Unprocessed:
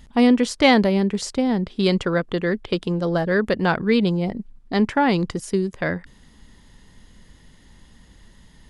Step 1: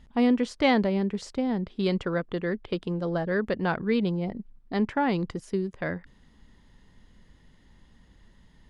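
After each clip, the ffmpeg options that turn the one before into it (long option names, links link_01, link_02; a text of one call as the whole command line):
ffmpeg -i in.wav -af "aemphasis=mode=reproduction:type=50kf,volume=-6.5dB" out.wav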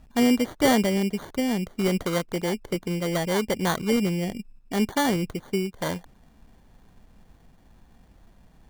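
ffmpeg -i in.wav -af "acrusher=samples=17:mix=1:aa=0.000001,volume=2dB" out.wav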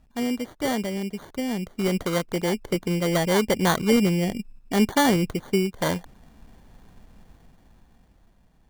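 ffmpeg -i in.wav -af "dynaudnorm=framelen=240:gausssize=13:maxgain=12dB,volume=-6.5dB" out.wav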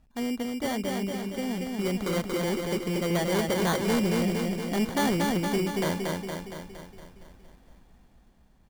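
ffmpeg -i in.wav -filter_complex "[0:a]asplit=2[link_01][link_02];[link_02]aecho=0:1:232|464|696|928|1160|1392|1624|1856:0.668|0.381|0.217|0.124|0.0706|0.0402|0.0229|0.0131[link_03];[link_01][link_03]amix=inputs=2:normalize=0,asoftclip=type=tanh:threshold=-16dB,volume=-3.5dB" out.wav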